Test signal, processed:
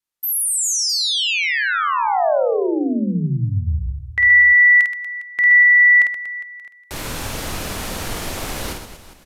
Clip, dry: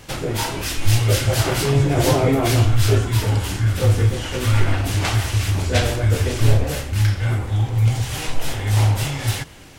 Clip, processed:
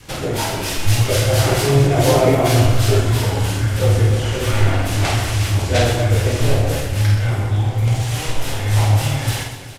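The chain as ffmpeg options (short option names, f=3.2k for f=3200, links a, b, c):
-af "adynamicequalizer=threshold=0.0158:dfrequency=630:dqfactor=1.9:tfrequency=630:tqfactor=1.9:attack=5:release=100:ratio=0.375:range=2:mode=boostabove:tftype=bell,aecho=1:1:50|125|237.5|406.2|659.4:0.631|0.398|0.251|0.158|0.1,aresample=32000,aresample=44100"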